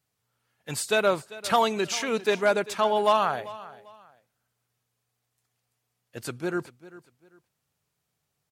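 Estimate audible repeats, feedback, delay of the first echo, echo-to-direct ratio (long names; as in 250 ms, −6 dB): 2, 28%, 395 ms, −17.5 dB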